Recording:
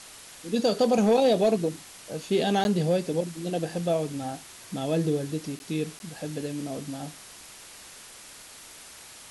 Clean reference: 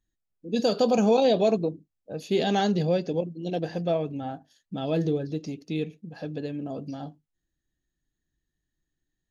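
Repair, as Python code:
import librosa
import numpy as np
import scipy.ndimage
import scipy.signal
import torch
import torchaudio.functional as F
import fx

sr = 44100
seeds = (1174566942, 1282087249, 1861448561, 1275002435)

y = fx.fix_declip(x, sr, threshold_db=-15.0)
y = fx.fix_interpolate(y, sr, at_s=(2.64, 5.59, 5.99), length_ms=11.0)
y = fx.noise_reduce(y, sr, print_start_s=8.05, print_end_s=8.55, reduce_db=30.0)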